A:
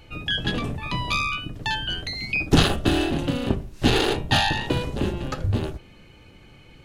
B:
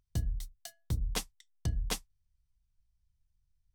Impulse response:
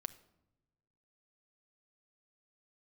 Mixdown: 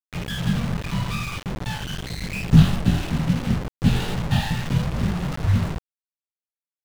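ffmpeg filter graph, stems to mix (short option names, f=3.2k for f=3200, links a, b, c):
-filter_complex "[0:a]lowshelf=f=250:t=q:w=3:g=9,flanger=delay=16.5:depth=6.2:speed=2.4,volume=-7dB,asplit=3[a][b][c];[b]volume=-5.5dB[d];[c]volume=-12.5dB[e];[1:a]lowpass=1.4k,adelay=450,volume=-5.5dB[f];[2:a]atrim=start_sample=2205[g];[d][g]afir=irnorm=-1:irlink=0[h];[e]aecho=0:1:80:1[i];[a][f][h][i]amix=inputs=4:normalize=0,acrusher=bits=4:mix=0:aa=0.000001,lowpass=f=3.9k:p=1"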